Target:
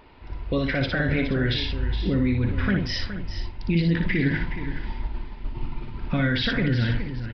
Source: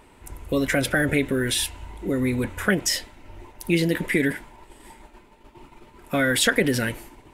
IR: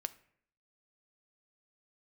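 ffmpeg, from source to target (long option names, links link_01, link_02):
-filter_complex "[0:a]asubboost=boost=6:cutoff=190,asettb=1/sr,asplit=3[link_01][link_02][link_03];[link_01]atrim=end=4.194[link_04];[link_02]atrim=start=4.19:end=6.17,asetpts=PTS-STARTPTS,afade=type=in:duration=0.004:curve=qsin,afade=type=out:start_time=1.976:duration=0.004:curve=qsin,acontrast=32[link_05];[link_03]atrim=start=6.166[link_06];[link_04][link_05]acrossfade=duration=0.004:curve1=hsin:curve2=qsin[link_07];[link_07][link_06]acrossfade=duration=0.004:curve1=qsin:curve2=hsin,alimiter=limit=-15.5dB:level=0:latency=1:release=49,aecho=1:1:418:0.282,asplit=2[link_08][link_09];[1:a]atrim=start_sample=2205,highshelf=frequency=6400:gain=9,adelay=59[link_10];[link_09][link_10]afir=irnorm=-1:irlink=0,volume=-4.5dB[link_11];[link_08][link_11]amix=inputs=2:normalize=0,aresample=11025,aresample=44100"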